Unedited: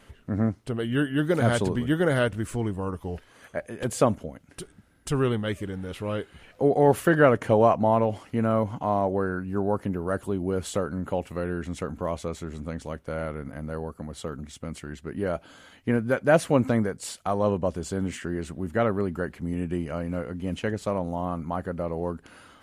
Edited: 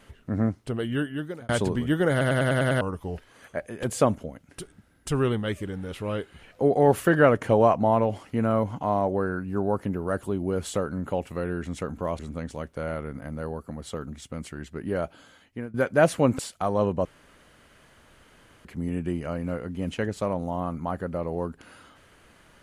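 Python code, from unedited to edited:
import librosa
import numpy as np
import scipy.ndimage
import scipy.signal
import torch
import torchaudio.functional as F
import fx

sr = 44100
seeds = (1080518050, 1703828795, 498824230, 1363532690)

y = fx.edit(x, sr, fx.fade_out_span(start_s=0.81, length_s=0.68),
    fx.stutter_over(start_s=2.11, slice_s=0.1, count=7),
    fx.cut(start_s=12.19, length_s=0.31),
    fx.fade_out_to(start_s=15.33, length_s=0.72, floor_db=-17.0),
    fx.cut(start_s=16.7, length_s=0.34),
    fx.room_tone_fill(start_s=17.7, length_s=1.6), tone=tone)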